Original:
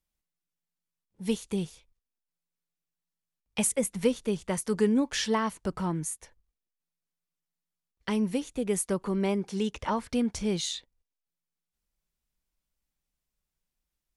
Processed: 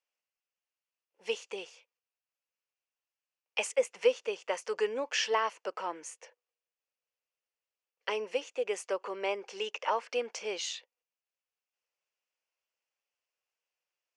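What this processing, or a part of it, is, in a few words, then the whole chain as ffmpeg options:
phone speaker on a table: -filter_complex "[0:a]highpass=f=480:w=0.5412,highpass=f=480:w=1.3066,equalizer=f=500:t=q:w=4:g=5,equalizer=f=2700:t=q:w=4:g=8,equalizer=f=3800:t=q:w=4:g=-9,lowpass=f=6400:w=0.5412,lowpass=f=6400:w=1.3066,asettb=1/sr,asplit=3[s0][s1][s2];[s0]atrim=end=6.124[s3];[s1]atrim=start=6.12:end=8.33,asetpts=PTS-STARTPTS,afade=t=in:d=0.004:c=qsin,afade=t=out:st=2.206:d=0.004:c=qsin,equalizer=f=480:t=o:w=0.57:g=5.5[s4];[s2]atrim=start=8.326[s5];[s3][s4]acrossfade=d=0.004:c1=hsin:c2=qsin[s6];[s6][s5]acrossfade=d=0.004:c1=qsin:c2=hsin"

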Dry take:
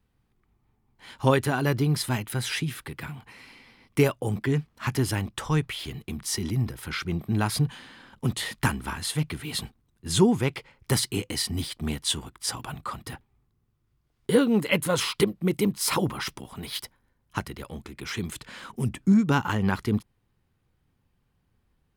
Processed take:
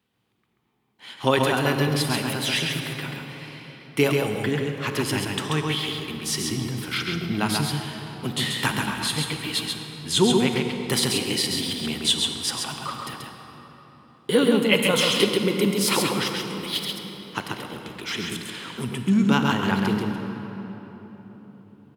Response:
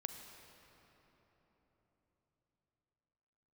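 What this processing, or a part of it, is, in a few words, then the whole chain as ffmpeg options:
PA in a hall: -filter_complex "[0:a]highpass=180,equalizer=f=3200:t=o:w=0.83:g=7,aecho=1:1:135:0.631[s0];[1:a]atrim=start_sample=2205[s1];[s0][s1]afir=irnorm=-1:irlink=0,volume=1.58"

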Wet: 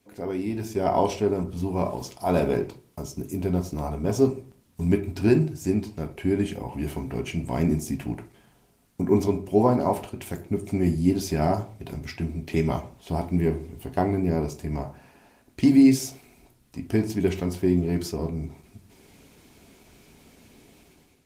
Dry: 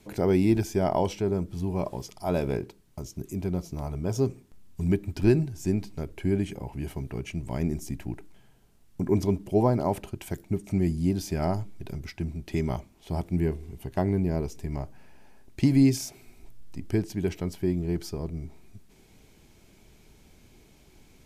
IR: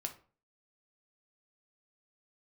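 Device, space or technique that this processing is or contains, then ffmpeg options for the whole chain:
far-field microphone of a smart speaker: -filter_complex "[1:a]atrim=start_sample=2205[s0];[0:a][s0]afir=irnorm=-1:irlink=0,highpass=f=150:p=1,dynaudnorm=f=520:g=3:m=5.01,volume=0.531" -ar 48000 -c:a libopus -b:a 20k

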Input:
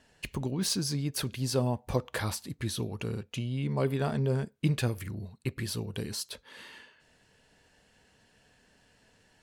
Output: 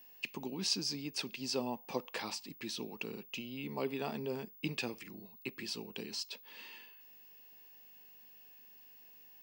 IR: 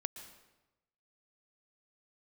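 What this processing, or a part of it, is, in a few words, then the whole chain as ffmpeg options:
old television with a line whistle: -filter_complex "[0:a]asettb=1/sr,asplit=3[s0][s1][s2];[s0]atrim=end=6.034[s3];[s1]atrim=start=6.03:end=6.59,asetpts=PTS-STARTPTS,afade=t=in:d=0.004:c=qsin,afade=t=out:st=0.556:d=0.004:c=qsin,lowpass=9100[s4];[s2]atrim=start=6.586[s5];[s3][s4]acrossfade=d=0.004:c1=hsin:c2=qsin[s6];[s6][s5]acrossfade=d=0.004:c1=qsin:c2=hsin,highpass=f=200:w=0.5412,highpass=f=200:w=1.3066,equalizer=f=590:t=q:w=4:g=-4,equalizer=f=860:t=q:w=4:g=4,equalizer=f=1500:t=q:w=4:g=-6,equalizer=f=2600:t=q:w=4:g=9,equalizer=f=5100:t=q:w=4:g=7,lowpass=f=7800:w=0.5412,lowpass=f=7800:w=1.3066,aeval=exprs='val(0)+0.00355*sin(2*PI*15625*n/s)':c=same,volume=0.501"

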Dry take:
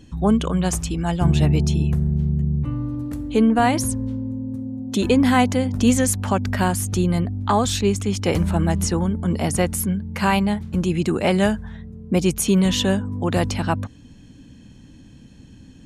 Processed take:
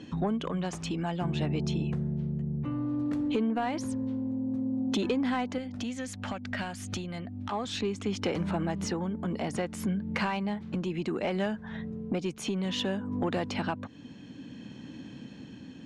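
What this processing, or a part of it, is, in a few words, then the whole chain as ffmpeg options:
AM radio: -filter_complex "[0:a]highpass=190,lowpass=4100,acompressor=threshold=0.0251:ratio=5,asoftclip=type=tanh:threshold=0.0631,tremolo=f=0.6:d=0.27,asettb=1/sr,asplit=3[s0][s1][s2];[s0]atrim=end=5.584[s3];[s1]atrim=start=5.58:end=7.52,asetpts=PTS-STARTPTS,afade=t=in:d=0.004:c=qsin,afade=t=out:st=1.936:d=0.004:c=qsin,equalizer=f=160:t=o:w=0.67:g=-7,equalizer=f=400:t=o:w=0.67:g=-11,equalizer=f=1000:t=o:w=0.67:g=-8[s4];[s2]atrim=start=7.516[s5];[s3][s4]acrossfade=d=0.004:c1=hsin:c2=qsin[s6];[s6][s5]acrossfade=d=0.004:c1=qsin:c2=hsin,volume=1.88"

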